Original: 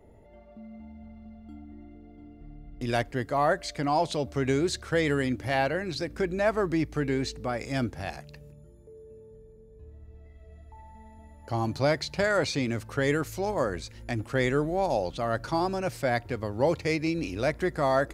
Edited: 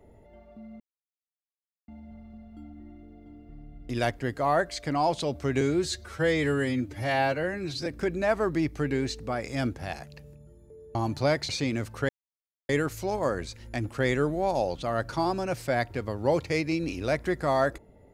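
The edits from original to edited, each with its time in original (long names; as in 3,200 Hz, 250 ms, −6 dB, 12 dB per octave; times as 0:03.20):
0:00.80: splice in silence 1.08 s
0:04.53–0:06.03: time-stretch 1.5×
0:09.12–0:11.54: remove
0:12.08–0:12.44: remove
0:13.04: splice in silence 0.60 s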